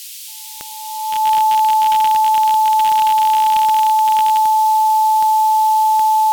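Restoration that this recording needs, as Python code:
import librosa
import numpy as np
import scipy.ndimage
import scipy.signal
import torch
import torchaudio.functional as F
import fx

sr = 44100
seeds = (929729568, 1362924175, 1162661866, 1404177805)

y = fx.fix_declick_ar(x, sr, threshold=10.0)
y = fx.notch(y, sr, hz=870.0, q=30.0)
y = fx.noise_reduce(y, sr, print_start_s=0.0, print_end_s=0.5, reduce_db=30.0)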